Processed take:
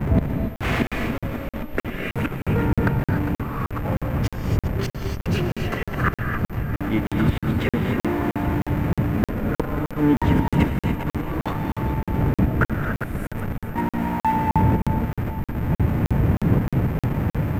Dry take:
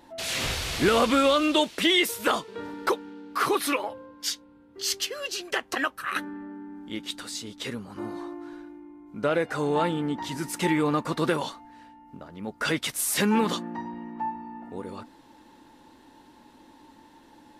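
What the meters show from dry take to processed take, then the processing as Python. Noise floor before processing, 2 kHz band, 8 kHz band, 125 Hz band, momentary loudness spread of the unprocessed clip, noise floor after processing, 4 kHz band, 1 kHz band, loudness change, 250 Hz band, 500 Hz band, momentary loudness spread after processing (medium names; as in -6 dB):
-55 dBFS, +1.0 dB, under -10 dB, +18.0 dB, 18 LU, under -85 dBFS, -10.5 dB, +2.5 dB, +3.0 dB, +7.0 dB, 0.0 dB, 8 LU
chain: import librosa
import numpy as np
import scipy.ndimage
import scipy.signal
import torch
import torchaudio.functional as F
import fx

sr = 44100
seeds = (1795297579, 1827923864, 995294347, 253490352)

p1 = fx.dmg_wind(x, sr, seeds[0], corner_hz=160.0, level_db=-29.0)
p2 = fx.gate_flip(p1, sr, shuts_db=-17.0, range_db=-29)
p3 = p2 + 10.0 ** (-49.0 / 20.0) * np.sin(2.0 * np.pi * 13000.0 * np.arange(len(p2)) / sr)
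p4 = scipy.signal.sosfilt(scipy.signal.butter(2, 75.0, 'highpass', fs=sr, output='sos'), p3)
p5 = fx.tilt_eq(p4, sr, slope=-1.5)
p6 = fx.echo_split(p5, sr, split_hz=500.0, low_ms=538, high_ms=403, feedback_pct=52, wet_db=-11.5)
p7 = fx.schmitt(p6, sr, flips_db=-38.0)
p8 = p6 + (p7 * librosa.db_to_amplitude(-3.0))
p9 = fx.high_shelf_res(p8, sr, hz=3000.0, db=-11.5, q=1.5)
p10 = fx.rev_gated(p9, sr, seeds[1], gate_ms=310, shape='rising', drr_db=3.0)
p11 = fx.buffer_crackle(p10, sr, first_s=0.56, period_s=0.31, block=2048, kind='zero')
y = p11 * librosa.db_to_amplitude(6.5)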